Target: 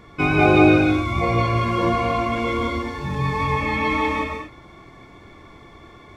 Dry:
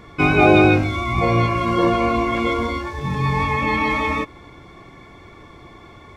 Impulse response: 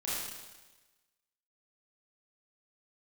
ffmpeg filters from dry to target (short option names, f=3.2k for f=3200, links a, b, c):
-filter_complex "[0:a]asplit=2[a][b];[1:a]atrim=start_sample=2205,afade=t=out:st=0.2:d=0.01,atrim=end_sample=9261,adelay=106[c];[b][c]afir=irnorm=-1:irlink=0,volume=-6.5dB[d];[a][d]amix=inputs=2:normalize=0,volume=-3.5dB"